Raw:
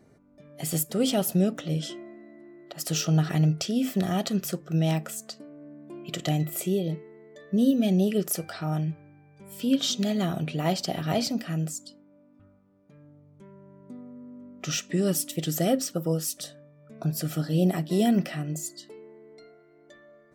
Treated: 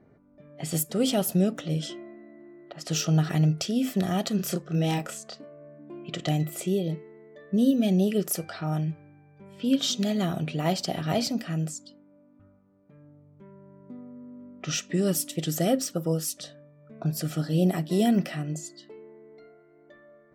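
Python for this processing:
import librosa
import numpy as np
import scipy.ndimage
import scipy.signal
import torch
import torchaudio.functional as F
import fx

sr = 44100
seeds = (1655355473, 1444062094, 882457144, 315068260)

y = fx.env_lowpass(x, sr, base_hz=2100.0, full_db=-24.0)
y = fx.doubler(y, sr, ms=29.0, db=-2.0, at=(4.38, 5.78), fade=0.02)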